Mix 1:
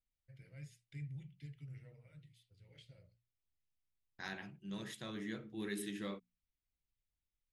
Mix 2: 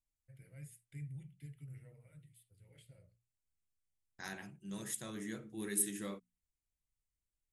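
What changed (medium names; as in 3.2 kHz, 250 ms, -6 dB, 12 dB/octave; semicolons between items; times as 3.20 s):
first voice: add peaking EQ 6 kHz -13.5 dB 0.83 oct; master: add resonant high shelf 5.9 kHz +14 dB, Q 1.5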